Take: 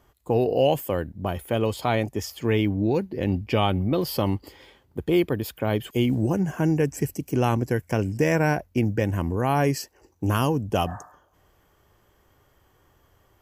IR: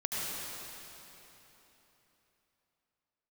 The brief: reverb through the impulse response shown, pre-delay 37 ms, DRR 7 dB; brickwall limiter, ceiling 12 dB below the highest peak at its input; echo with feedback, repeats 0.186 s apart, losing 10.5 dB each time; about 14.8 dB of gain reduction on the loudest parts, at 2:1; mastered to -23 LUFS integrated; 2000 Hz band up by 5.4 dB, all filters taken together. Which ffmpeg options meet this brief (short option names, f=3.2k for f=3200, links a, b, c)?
-filter_complex "[0:a]equalizer=f=2k:t=o:g=7,acompressor=threshold=-44dB:ratio=2,alimiter=level_in=7dB:limit=-24dB:level=0:latency=1,volume=-7dB,aecho=1:1:186|372|558:0.299|0.0896|0.0269,asplit=2[a][b];[1:a]atrim=start_sample=2205,adelay=37[c];[b][c]afir=irnorm=-1:irlink=0,volume=-13.5dB[d];[a][d]amix=inputs=2:normalize=0,volume=18.5dB"